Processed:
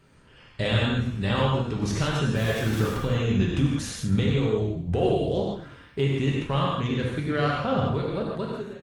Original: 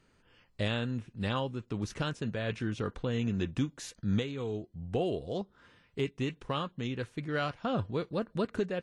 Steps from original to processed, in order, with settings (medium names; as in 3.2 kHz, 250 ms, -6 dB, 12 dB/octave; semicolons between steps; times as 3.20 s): fade out at the end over 1.29 s; in parallel at +3 dB: peak limiter -30 dBFS, peak gain reduction 10 dB; 2.36–2.97 s: on the sum: small samples zeroed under -34.5 dBFS; on a send: frequency-shifting echo 98 ms, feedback 42%, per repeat -35 Hz, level -12.5 dB; on the sum: gated-style reverb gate 190 ms flat, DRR -3 dB; Opus 32 kbps 48 kHz